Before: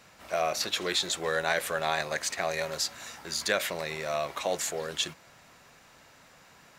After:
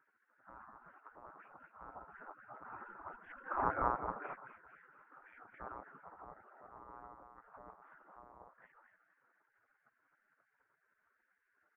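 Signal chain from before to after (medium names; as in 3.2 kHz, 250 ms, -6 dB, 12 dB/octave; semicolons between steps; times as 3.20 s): Doppler pass-by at 2.14 s, 56 m/s, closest 5.7 m; speed mistake 78 rpm record played at 45 rpm; decimation with a swept rate 13×, swing 160% 3.9 Hz; crackle 440 per s -57 dBFS; feedback delay 229 ms, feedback 33%, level -10 dB; monotone LPC vocoder at 8 kHz 120 Hz; elliptic low-pass 1.2 kHz, stop band 70 dB; spectral gate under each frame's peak -20 dB weak; tape noise reduction on one side only encoder only; trim +17 dB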